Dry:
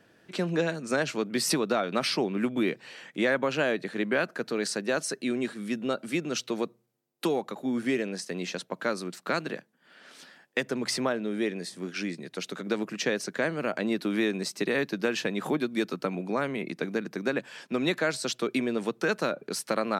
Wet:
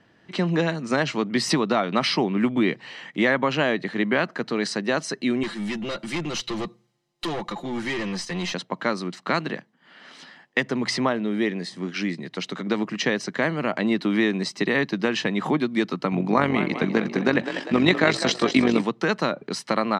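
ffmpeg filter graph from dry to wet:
-filter_complex "[0:a]asettb=1/sr,asplit=3[a][b][c];[a]atrim=end=5.434[d];[b]atrim=start=5.43:end=8.54,asetpts=PTS-STARTPTS,afade=t=in:d=0.004:c=qsin,afade=t=out:st=3.106:d=0.004:c=qsin,highshelf=f=2.3k:g=8,aecho=1:1:5.8:0.67,atrim=end_sample=137151,aeval=exprs='(tanh(31.6*val(0)+0.2)-tanh(0.2))/31.6':c=same[e];[c]atrim=start=8.536[f];[d][e]acrossfade=d=0.004:c1=hsin:c2=qsin[g];[g][f]acrossfade=d=0.004:c1=qsin:c2=hsin,asettb=1/sr,asplit=3[h][i][j];[h]atrim=end=16.124[k];[i]atrim=start=16.12:end=18.82,asetpts=PTS-STARTPTS,afade=t=in:d=0.004:c=qsin,afade=t=out:st=2.696:d=0.004:c=qsin,asplit=7[l][m][n][o][p][q][r];[m]adelay=199,afreqshift=39,volume=-10dB[s];[n]adelay=398,afreqshift=78,volume=-15.2dB[t];[o]adelay=597,afreqshift=117,volume=-20.4dB[u];[p]adelay=796,afreqshift=156,volume=-25.6dB[v];[q]adelay=995,afreqshift=195,volume=-30.8dB[w];[r]adelay=1194,afreqshift=234,volume=-36dB[x];[l][s][t][u][v][w][x]amix=inputs=7:normalize=0,atrim=end_sample=119070,acontrast=49,tremolo=f=47:d=0.571[y];[j]atrim=start=18.816[z];[k][y]acrossfade=d=0.004:c1=hsin:c2=qsin[aa];[aa][z]acrossfade=d=0.004:c1=qsin:c2=hsin,lowpass=4.9k,aecho=1:1:1:0.37,dynaudnorm=f=190:g=3:m=4dB,volume=2dB"

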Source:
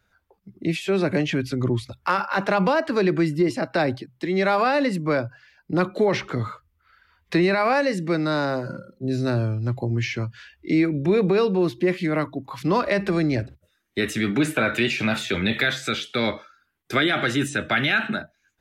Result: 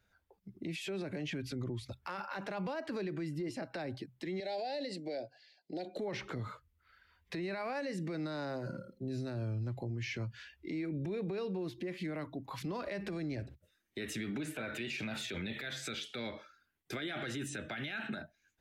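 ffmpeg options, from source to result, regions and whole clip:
-filter_complex "[0:a]asettb=1/sr,asplit=3[a][b][c];[a]atrim=end=4.404[d];[b]atrim=start=4.4:end=5.96,asetpts=PTS-STARTPTS,afade=t=in:d=0.004:c=qsin,afade=t=out:st=1.556:d=0.004:c=qsin,acompressor=threshold=-22dB:ratio=4:attack=3.2:release=140:knee=1:detection=peak,asuperstop=centerf=1200:order=4:qfactor=0.83,highpass=380,equalizer=f=720:t=q:w=4:g=9,equalizer=f=1.3k:t=q:w=4:g=6,equalizer=f=2.5k:t=q:w=4:g=-5,equalizer=f=4.3k:t=q:w=4:g=9,equalizer=f=6.4k:t=q:w=4:g=-4,lowpass=f=8.6k:w=0.5412,lowpass=f=8.6k:w=1.3066[e];[c]atrim=start=5.956[f];[d][e]acrossfade=d=0.004:c1=hsin:c2=qsin[g];[g][f]acrossfade=d=0.004:c1=qsin:c2=hsin,equalizer=f=1.2k:w=2.4:g=-4.5,acompressor=threshold=-26dB:ratio=6,alimiter=level_in=1dB:limit=-24dB:level=0:latency=1:release=50,volume=-1dB,volume=-6dB"

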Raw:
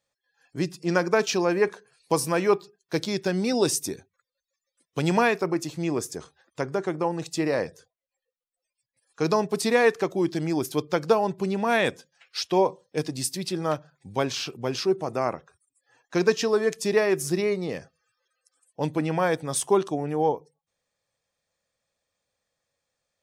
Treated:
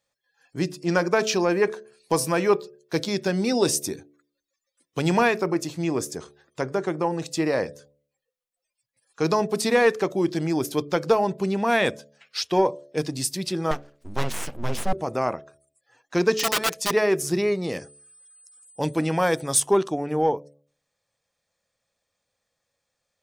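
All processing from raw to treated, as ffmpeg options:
-filter_complex "[0:a]asettb=1/sr,asplit=3[a][b][c];[a]atrim=end=13.714[d];[b]atrim=start=13.71:end=14.93,asetpts=PTS-STARTPTS,afade=t=in:d=0.004:c=qsin,afade=t=out:st=1.216:d=0.004:c=qsin,asubboost=boost=10.5:cutoff=200,aeval=exprs='abs(val(0))':c=same[e];[c]atrim=start=14.926[f];[d][e]acrossfade=d=0.004:c1=hsin:c2=qsin[g];[g][f]acrossfade=d=0.004:c1=qsin:c2=hsin,asettb=1/sr,asplit=3[h][i][j];[h]atrim=end=16.364[k];[i]atrim=start=16.36:end=16.91,asetpts=PTS-STARTPTS,afade=t=in:d=0.004:c=qsin,afade=t=out:st=0.546:d=0.004:c=qsin,aeval=exprs='(mod(8.91*val(0)+1,2)-1)/8.91':c=same,lowshelf=f=250:g=-11.5,aecho=1:1:6:0.51,atrim=end_sample=24255[l];[j]atrim=start=16.906[m];[k][l]acrossfade=d=0.004:c1=hsin:c2=qsin[n];[n][m]acrossfade=d=0.004:c1=qsin:c2=hsin,asettb=1/sr,asplit=3[o][p][q];[o]atrim=end=17.644[r];[p]atrim=start=17.64:end=19.6,asetpts=PTS-STARTPTS,afade=t=in:d=0.004:c=qsin,afade=t=out:st=1.956:d=0.004:c=qsin,highshelf=f=4.5k:g=8,aeval=exprs='val(0)+0.00224*sin(2*PI*8100*n/s)':c=same[s];[q]atrim=start=19.596[t];[r][s]acrossfade=d=0.004:c1=hsin:c2=qsin[u];[u][t]acrossfade=d=0.004:c1=qsin:c2=hsin,bandreject=f=72.24:t=h:w=4,bandreject=f=144.48:t=h:w=4,bandreject=f=216.72:t=h:w=4,bandreject=f=288.96:t=h:w=4,bandreject=f=361.2:t=h:w=4,bandreject=f=433.44:t=h:w=4,bandreject=f=505.68:t=h:w=4,bandreject=f=577.92:t=h:w=4,bandreject=f=650.16:t=h:w=4,acontrast=63,volume=-4.5dB"

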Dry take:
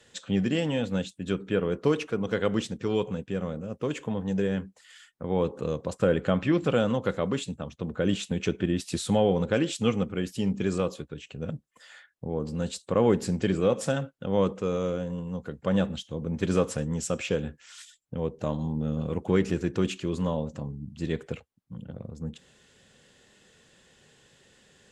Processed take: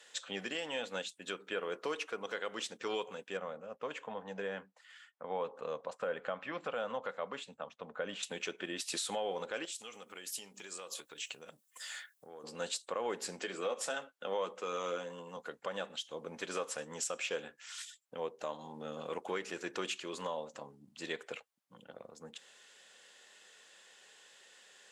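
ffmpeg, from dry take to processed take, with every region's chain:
-filter_complex "[0:a]asettb=1/sr,asplit=3[a][b][c];[a]atrim=end=3.374[d];[b]atrim=start=3.37:end=8.23,asetpts=PTS-STARTPTS,afade=t=in:d=0.004:c=qsin,afade=t=out:st=4.856:d=0.004:c=qsin,lowpass=f=1.4k:p=1,equalizer=f=350:t=o:w=0.39:g=-11[e];[c]atrim=start=8.226[f];[d][e]acrossfade=d=0.004:c1=hsin:c2=qsin[g];[g][f]acrossfade=d=0.004:c1=qsin:c2=hsin,asettb=1/sr,asplit=3[h][i][j];[h]atrim=end=9.654[k];[i]atrim=start=9.65:end=12.44,asetpts=PTS-STARTPTS,afade=t=in:d=0.004:c=qsin,afade=t=out:st=2.786:d=0.004:c=qsin,aemphasis=mode=production:type=75kf,acompressor=threshold=-37dB:ratio=10:attack=3.2:release=140:knee=1:detection=peak[l];[j]atrim=start=12.436[m];[k][l]acrossfade=d=0.004:c1=hsin:c2=qsin[n];[n][m]acrossfade=d=0.004:c1=qsin:c2=hsin,asettb=1/sr,asplit=3[o][p][q];[o]atrim=end=13.394[r];[p]atrim=start=13.39:end=15.37,asetpts=PTS-STARTPTS,afade=t=in:d=0.004:c=qsin,afade=t=out:st=1.976:d=0.004:c=qsin,highpass=f=160:w=0.5412,highpass=f=160:w=1.3066,asplit=2[s][t];[t]adelay=12,volume=-7.5dB[u];[s][u]amix=inputs=2:normalize=0,atrim=end_sample=87318[v];[q]atrim=start=15.366[w];[r][v]acrossfade=d=0.004:c1=hsin:c2=qsin[x];[x][w]acrossfade=d=0.004:c1=qsin:c2=hsin,highpass=700,alimiter=level_in=3.5dB:limit=-24dB:level=0:latency=1:release=368,volume=-3.5dB,volume=1.5dB"

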